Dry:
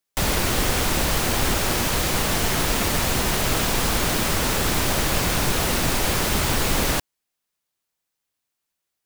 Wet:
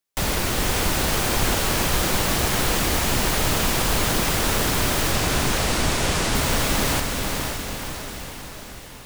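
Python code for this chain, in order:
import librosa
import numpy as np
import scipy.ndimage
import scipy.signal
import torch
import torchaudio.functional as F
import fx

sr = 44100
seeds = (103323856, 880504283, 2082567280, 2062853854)

y = fx.lowpass(x, sr, hz=10000.0, slope=24, at=(5.11, 6.35))
y = fx.echo_diffused(y, sr, ms=511, feedback_pct=58, wet_db=-4.0)
y = y * librosa.db_to_amplitude(-1.5)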